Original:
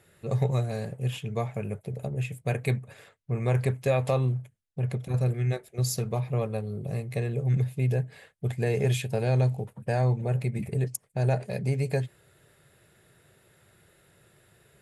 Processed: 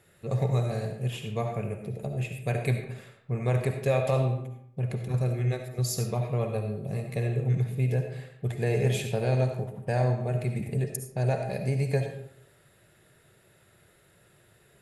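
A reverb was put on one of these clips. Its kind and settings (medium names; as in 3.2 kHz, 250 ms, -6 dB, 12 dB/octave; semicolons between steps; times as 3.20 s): algorithmic reverb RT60 0.71 s, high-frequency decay 0.65×, pre-delay 30 ms, DRR 4.5 dB; trim -1 dB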